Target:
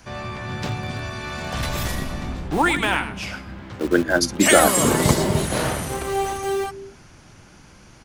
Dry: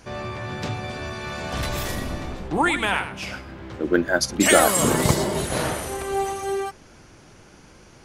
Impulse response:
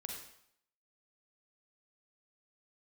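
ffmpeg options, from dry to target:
-filter_complex "[0:a]acrossover=split=340|500|4200[a][b][c][d];[a]aecho=1:1:246:0.631[e];[b]acrusher=bits=5:mix=0:aa=0.000001[f];[e][f][c][d]amix=inputs=4:normalize=0,volume=1.5dB"

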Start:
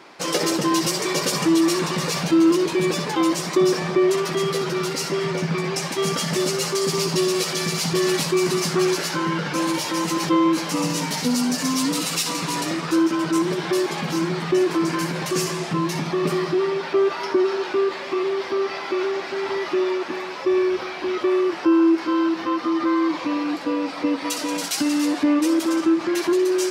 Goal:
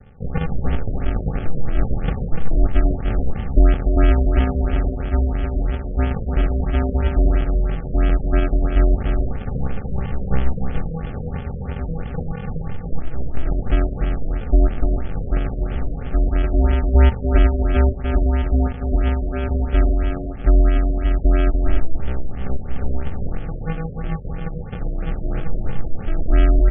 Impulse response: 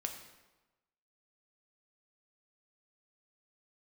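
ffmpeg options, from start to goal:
-af "highpass=f=260:w=0.5412,highpass=f=260:w=1.3066,equalizer=f=390:w=4.1:g=7,aecho=1:1:5.8:0.5,aresample=11025,acrusher=samples=34:mix=1:aa=0.000001,aresample=44100,asuperstop=centerf=1000:order=20:qfactor=5.3,aecho=1:1:294:0.531,afftfilt=real='re*lt(b*sr/1024,660*pow(3500/660,0.5+0.5*sin(2*PI*3*pts/sr)))':imag='im*lt(b*sr/1024,660*pow(3500/660,0.5+0.5*sin(2*PI*3*pts/sr)))':win_size=1024:overlap=0.75,volume=-1dB"

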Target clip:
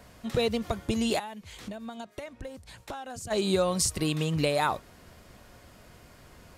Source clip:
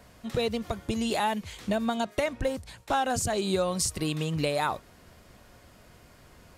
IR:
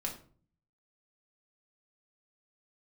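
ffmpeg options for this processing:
-filter_complex "[0:a]asplit=3[a][b][c];[a]afade=t=out:st=1.18:d=0.02[d];[b]acompressor=threshold=-40dB:ratio=5,afade=t=in:st=1.18:d=0.02,afade=t=out:st=3.3:d=0.02[e];[c]afade=t=in:st=3.3:d=0.02[f];[d][e][f]amix=inputs=3:normalize=0,volume=1.5dB"

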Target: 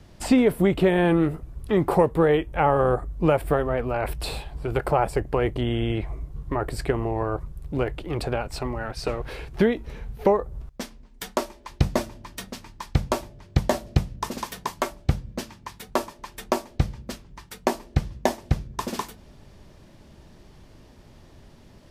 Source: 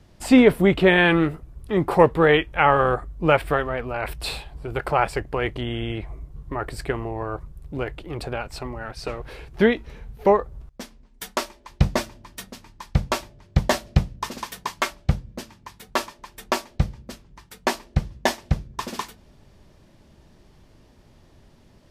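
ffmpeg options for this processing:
-filter_complex "[0:a]acrossover=split=910|7200[a][b][c];[a]acompressor=threshold=-20dB:ratio=4[d];[b]acompressor=threshold=-38dB:ratio=4[e];[c]acompressor=threshold=-45dB:ratio=4[f];[d][e][f]amix=inputs=3:normalize=0,volume=3.5dB"

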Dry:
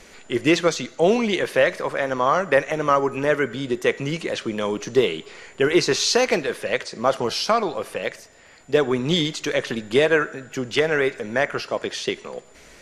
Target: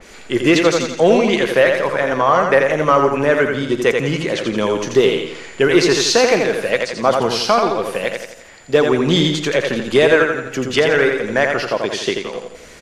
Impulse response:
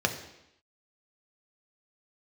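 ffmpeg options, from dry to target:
-filter_complex "[0:a]aecho=1:1:85|170|255|340|425|510:0.562|0.259|0.119|0.0547|0.0252|0.0116,asplit=2[a][b];[b]acontrast=49,volume=2dB[c];[a][c]amix=inputs=2:normalize=0,adynamicequalizer=threshold=0.0794:dfrequency=3100:dqfactor=0.7:tfrequency=3100:tqfactor=0.7:attack=5:release=100:ratio=0.375:range=2:mode=cutabove:tftype=highshelf,volume=-5.5dB"

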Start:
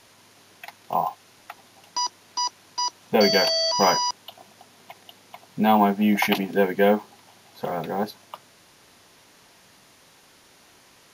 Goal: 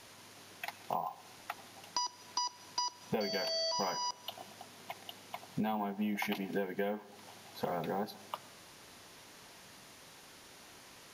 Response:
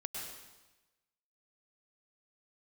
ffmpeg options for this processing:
-filter_complex "[0:a]acompressor=threshold=-31dB:ratio=12,asplit=2[a][b];[1:a]atrim=start_sample=2205[c];[b][c]afir=irnorm=-1:irlink=0,volume=-15.5dB[d];[a][d]amix=inputs=2:normalize=0,volume=-2dB"

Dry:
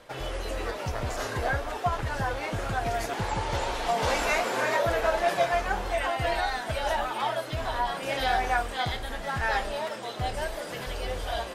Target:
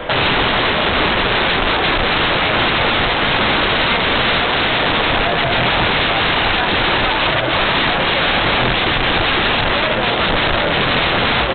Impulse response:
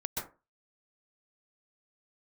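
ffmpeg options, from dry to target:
-filter_complex "[0:a]acrossover=split=120[a][b];[b]acompressor=threshold=-34dB:ratio=8[c];[a][c]amix=inputs=2:normalize=0,asplit=2[d][e];[e]adelay=24,volume=-8.5dB[f];[d][f]amix=inputs=2:normalize=0,aresample=8000,aeval=exprs='(mod(42.2*val(0)+1,2)-1)/42.2':c=same,aresample=44100,aecho=1:1:336:0.335,alimiter=level_in=33.5dB:limit=-1dB:release=50:level=0:latency=1,volume=-7dB"

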